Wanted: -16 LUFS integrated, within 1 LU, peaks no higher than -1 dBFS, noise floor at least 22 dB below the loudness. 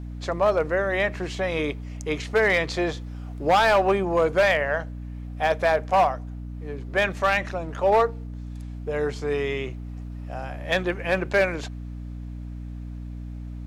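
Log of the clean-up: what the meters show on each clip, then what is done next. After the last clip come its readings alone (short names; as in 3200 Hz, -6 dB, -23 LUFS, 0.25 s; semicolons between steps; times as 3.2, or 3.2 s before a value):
clipped 0.7%; flat tops at -13.0 dBFS; hum 60 Hz; harmonics up to 300 Hz; hum level -32 dBFS; loudness -24.0 LUFS; peak -13.0 dBFS; loudness target -16.0 LUFS
-> clip repair -13 dBFS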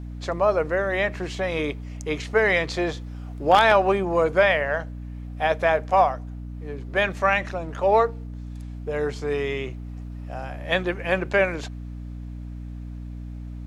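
clipped 0.0%; hum 60 Hz; harmonics up to 300 Hz; hum level -32 dBFS
-> de-hum 60 Hz, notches 5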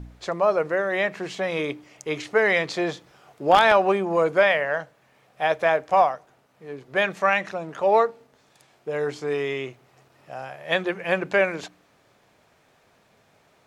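hum none; loudness -23.0 LUFS; peak -3.5 dBFS; loudness target -16.0 LUFS
-> gain +7 dB; limiter -1 dBFS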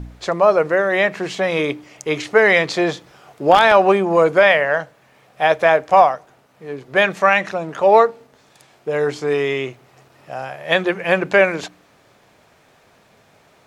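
loudness -16.5 LUFS; peak -1.0 dBFS; noise floor -54 dBFS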